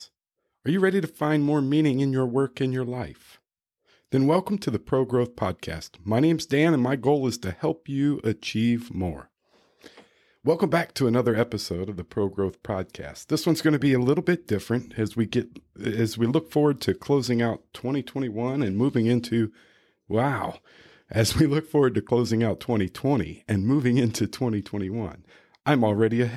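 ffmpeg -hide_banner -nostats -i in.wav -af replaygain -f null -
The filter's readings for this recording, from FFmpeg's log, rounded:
track_gain = +5.0 dB
track_peak = 0.281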